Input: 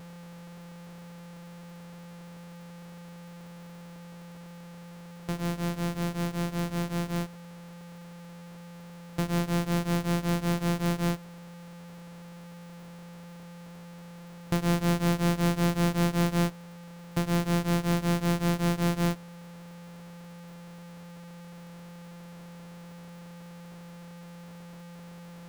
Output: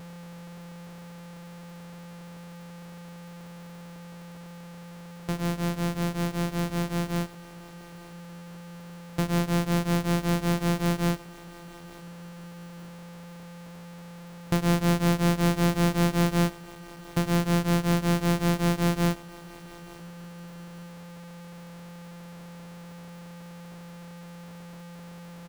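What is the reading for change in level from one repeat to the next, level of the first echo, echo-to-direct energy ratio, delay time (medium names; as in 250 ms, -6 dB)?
-9.5 dB, -20.0 dB, -19.5 dB, 874 ms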